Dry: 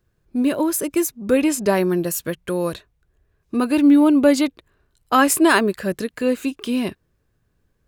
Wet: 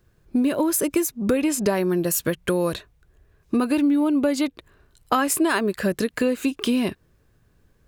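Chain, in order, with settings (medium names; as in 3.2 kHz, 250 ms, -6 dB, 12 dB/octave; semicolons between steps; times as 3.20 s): compression 6:1, threshold -25 dBFS, peak gain reduction 15 dB; trim +6.5 dB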